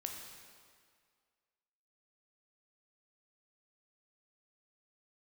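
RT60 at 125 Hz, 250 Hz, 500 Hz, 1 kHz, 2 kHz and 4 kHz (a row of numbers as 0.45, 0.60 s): 1.7, 1.8, 2.0, 2.0, 1.8, 1.7 s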